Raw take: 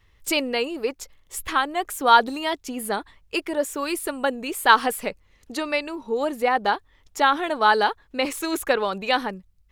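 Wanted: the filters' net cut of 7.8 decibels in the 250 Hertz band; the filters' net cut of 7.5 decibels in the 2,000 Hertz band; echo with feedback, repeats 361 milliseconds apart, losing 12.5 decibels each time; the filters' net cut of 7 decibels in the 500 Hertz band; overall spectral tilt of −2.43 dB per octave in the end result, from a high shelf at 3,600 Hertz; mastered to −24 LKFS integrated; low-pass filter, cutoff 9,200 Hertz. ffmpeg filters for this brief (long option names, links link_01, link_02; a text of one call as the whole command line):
ffmpeg -i in.wav -af "lowpass=9200,equalizer=frequency=250:width_type=o:gain=-7.5,equalizer=frequency=500:width_type=o:gain=-6,equalizer=frequency=2000:width_type=o:gain=-8,highshelf=frequency=3600:gain=-8,aecho=1:1:361|722|1083:0.237|0.0569|0.0137,volume=4.5dB" out.wav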